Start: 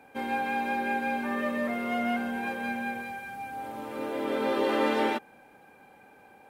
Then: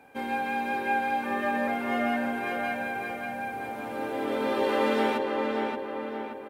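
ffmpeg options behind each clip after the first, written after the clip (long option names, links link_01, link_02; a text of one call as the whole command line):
ffmpeg -i in.wav -filter_complex "[0:a]asplit=2[link_01][link_02];[link_02]adelay=577,lowpass=frequency=3000:poles=1,volume=-3dB,asplit=2[link_03][link_04];[link_04]adelay=577,lowpass=frequency=3000:poles=1,volume=0.53,asplit=2[link_05][link_06];[link_06]adelay=577,lowpass=frequency=3000:poles=1,volume=0.53,asplit=2[link_07][link_08];[link_08]adelay=577,lowpass=frequency=3000:poles=1,volume=0.53,asplit=2[link_09][link_10];[link_10]adelay=577,lowpass=frequency=3000:poles=1,volume=0.53,asplit=2[link_11][link_12];[link_12]adelay=577,lowpass=frequency=3000:poles=1,volume=0.53,asplit=2[link_13][link_14];[link_14]adelay=577,lowpass=frequency=3000:poles=1,volume=0.53[link_15];[link_01][link_03][link_05][link_07][link_09][link_11][link_13][link_15]amix=inputs=8:normalize=0" out.wav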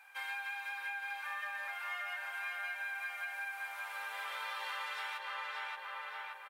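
ffmpeg -i in.wav -filter_complex "[0:a]highpass=frequency=1100:width=0.5412,highpass=frequency=1100:width=1.3066,acompressor=threshold=-39dB:ratio=6,asplit=2[link_01][link_02];[link_02]adelay=22,volume=-12.5dB[link_03];[link_01][link_03]amix=inputs=2:normalize=0,volume=1dB" out.wav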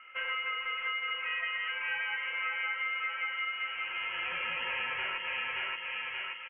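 ffmpeg -i in.wav -af "lowpass=frequency=3100:width_type=q:width=0.5098,lowpass=frequency=3100:width_type=q:width=0.6013,lowpass=frequency=3100:width_type=q:width=0.9,lowpass=frequency=3100:width_type=q:width=2.563,afreqshift=-3700,volume=6.5dB" out.wav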